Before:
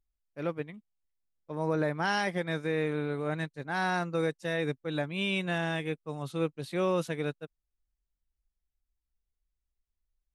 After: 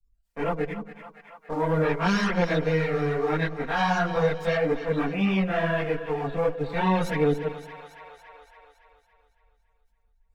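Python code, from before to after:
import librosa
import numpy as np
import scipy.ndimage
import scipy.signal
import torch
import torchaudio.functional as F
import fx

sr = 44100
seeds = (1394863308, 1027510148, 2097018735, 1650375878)

y = fx.lower_of_two(x, sr, delay_ms=4.3)
y = fx.bessel_lowpass(y, sr, hz=1900.0, order=2, at=(4.55, 6.74))
y = fx.spec_gate(y, sr, threshold_db=-30, keep='strong')
y = fx.leveller(y, sr, passes=1)
y = fx.chorus_voices(y, sr, voices=4, hz=1.5, base_ms=23, depth_ms=3.0, mix_pct=65)
y = fx.echo_split(y, sr, split_hz=670.0, low_ms=95, high_ms=281, feedback_pct=52, wet_db=-13.0)
y = fx.band_squash(y, sr, depth_pct=40)
y = y * librosa.db_to_amplitude(6.0)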